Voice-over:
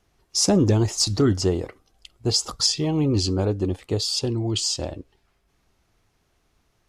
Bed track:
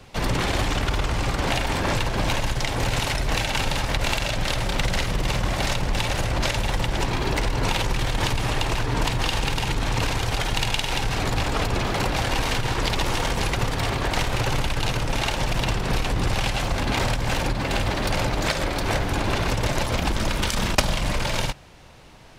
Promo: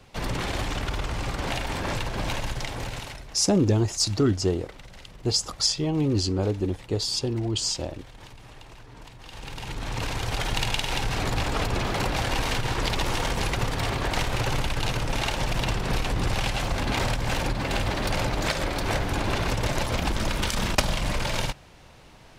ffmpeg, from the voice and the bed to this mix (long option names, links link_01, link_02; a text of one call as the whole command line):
ffmpeg -i stem1.wav -i stem2.wav -filter_complex "[0:a]adelay=3000,volume=-2.5dB[link_01];[1:a]volume=14.5dB,afade=type=out:start_time=2.53:duration=0.81:silence=0.141254,afade=type=in:start_time=9.23:duration=1.28:silence=0.1[link_02];[link_01][link_02]amix=inputs=2:normalize=0" out.wav